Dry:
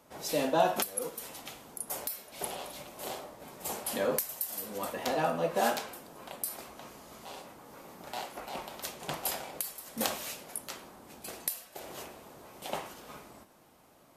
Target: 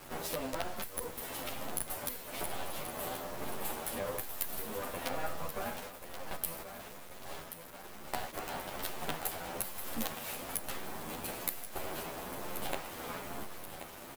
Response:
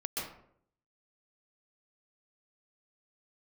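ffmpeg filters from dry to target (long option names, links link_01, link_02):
-filter_complex "[0:a]asettb=1/sr,asplit=3[link_01][link_02][link_03];[link_01]atrim=end=5.804[link_04];[link_02]atrim=start=5.8:end=8.33,asetpts=PTS-STARTPTS,afade=type=in:duration=0.004:curve=qsin,afade=type=out:start_time=2.526:duration=0.004:curve=qsin,agate=range=-13dB:threshold=-42dB:ratio=16:detection=peak[link_05];[link_03]atrim=start=8.326[link_06];[link_04][link_05]acrossfade=duration=0.004:curve1=hsin:curve2=qsin[link_07];[link_07][link_06]acrossfade=duration=0.004:curve1=qsin:curve2=hsin,equalizer=frequency=6000:width_type=o:width=1.1:gain=-10.5,acompressor=threshold=-47dB:ratio=6,acrusher=bits=7:dc=4:mix=0:aa=0.000001,aecho=1:1:1081|2162|3243|4324|5405:0.282|0.138|0.0677|0.0332|0.0162,asplit=2[link_08][link_09];[link_09]adelay=10.6,afreqshift=1.1[link_10];[link_08][link_10]amix=inputs=2:normalize=1,volume=17dB"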